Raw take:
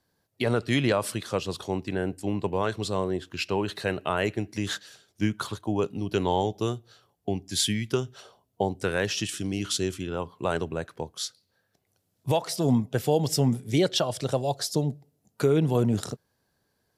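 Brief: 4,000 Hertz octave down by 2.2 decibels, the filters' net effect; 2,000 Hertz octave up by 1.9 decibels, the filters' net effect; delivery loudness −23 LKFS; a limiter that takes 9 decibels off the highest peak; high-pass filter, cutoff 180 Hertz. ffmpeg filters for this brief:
ffmpeg -i in.wav -af "highpass=180,equalizer=frequency=2000:width_type=o:gain=3.5,equalizer=frequency=4000:width_type=o:gain=-4,volume=9dB,alimiter=limit=-11dB:level=0:latency=1" out.wav

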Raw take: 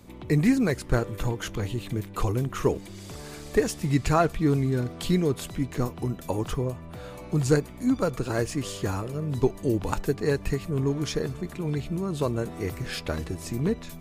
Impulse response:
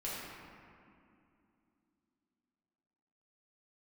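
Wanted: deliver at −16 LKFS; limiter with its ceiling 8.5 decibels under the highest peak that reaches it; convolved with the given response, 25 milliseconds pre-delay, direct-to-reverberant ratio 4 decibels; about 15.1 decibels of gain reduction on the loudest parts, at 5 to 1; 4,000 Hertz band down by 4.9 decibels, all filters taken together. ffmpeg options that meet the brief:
-filter_complex "[0:a]equalizer=frequency=4000:width_type=o:gain=-6.5,acompressor=threshold=-34dB:ratio=5,alimiter=level_in=4.5dB:limit=-24dB:level=0:latency=1,volume=-4.5dB,asplit=2[link_01][link_02];[1:a]atrim=start_sample=2205,adelay=25[link_03];[link_02][link_03]afir=irnorm=-1:irlink=0,volume=-7dB[link_04];[link_01][link_04]amix=inputs=2:normalize=0,volume=21.5dB"

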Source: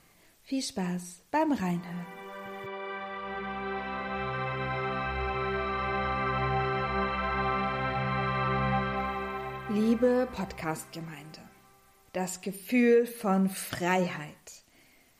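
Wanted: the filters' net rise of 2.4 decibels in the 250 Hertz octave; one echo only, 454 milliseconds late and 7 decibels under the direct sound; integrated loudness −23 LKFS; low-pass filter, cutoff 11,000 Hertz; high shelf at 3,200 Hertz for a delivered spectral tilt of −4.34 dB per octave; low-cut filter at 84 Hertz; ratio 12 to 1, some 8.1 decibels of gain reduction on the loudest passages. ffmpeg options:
ffmpeg -i in.wav -af "highpass=84,lowpass=11000,equalizer=frequency=250:width_type=o:gain=3,highshelf=frequency=3200:gain=8.5,acompressor=threshold=-25dB:ratio=12,aecho=1:1:454:0.447,volume=8dB" out.wav

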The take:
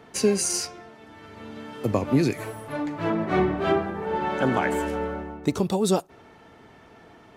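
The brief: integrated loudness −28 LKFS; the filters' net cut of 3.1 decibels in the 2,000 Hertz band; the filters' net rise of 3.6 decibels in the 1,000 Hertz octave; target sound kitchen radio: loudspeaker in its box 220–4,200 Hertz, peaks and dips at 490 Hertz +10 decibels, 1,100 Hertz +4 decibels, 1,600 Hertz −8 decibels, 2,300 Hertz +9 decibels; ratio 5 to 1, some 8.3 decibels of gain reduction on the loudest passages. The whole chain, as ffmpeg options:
ffmpeg -i in.wav -af "equalizer=frequency=1000:width_type=o:gain=4,equalizer=frequency=2000:width_type=o:gain=-6,acompressor=threshold=-25dB:ratio=5,highpass=220,equalizer=frequency=490:width_type=q:width=4:gain=10,equalizer=frequency=1100:width_type=q:width=4:gain=4,equalizer=frequency=1600:width_type=q:width=4:gain=-8,equalizer=frequency=2300:width_type=q:width=4:gain=9,lowpass=frequency=4200:width=0.5412,lowpass=frequency=4200:width=1.3066,volume=1dB" out.wav

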